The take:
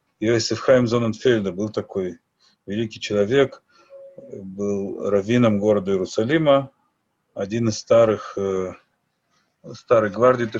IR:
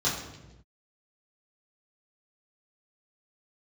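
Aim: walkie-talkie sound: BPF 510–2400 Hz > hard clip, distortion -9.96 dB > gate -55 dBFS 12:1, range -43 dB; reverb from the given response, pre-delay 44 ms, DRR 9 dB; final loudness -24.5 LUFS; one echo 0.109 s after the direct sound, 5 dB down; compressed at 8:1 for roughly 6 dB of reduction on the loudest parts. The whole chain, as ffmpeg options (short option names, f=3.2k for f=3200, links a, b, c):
-filter_complex "[0:a]acompressor=threshold=-16dB:ratio=8,aecho=1:1:109:0.562,asplit=2[a][b];[1:a]atrim=start_sample=2205,adelay=44[c];[b][c]afir=irnorm=-1:irlink=0,volume=-20dB[d];[a][d]amix=inputs=2:normalize=0,highpass=510,lowpass=2.4k,asoftclip=type=hard:threshold=-22.5dB,agate=range=-43dB:threshold=-55dB:ratio=12,volume=4.5dB"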